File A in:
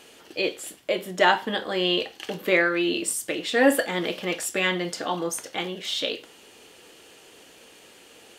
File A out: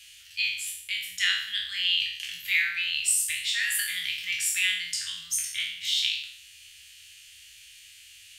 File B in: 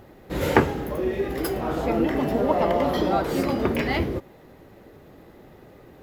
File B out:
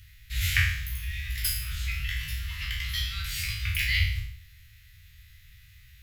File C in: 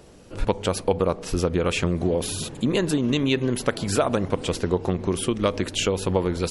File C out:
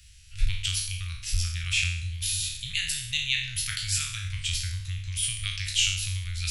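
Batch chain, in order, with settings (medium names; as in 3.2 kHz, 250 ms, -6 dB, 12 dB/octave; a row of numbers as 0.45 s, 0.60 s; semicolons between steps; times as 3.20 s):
spectral sustain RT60 0.67 s; inverse Chebyshev band-stop 240–830 Hz, stop band 60 dB; peak normalisation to -9 dBFS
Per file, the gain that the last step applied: +1.0 dB, +3.5 dB, +0.5 dB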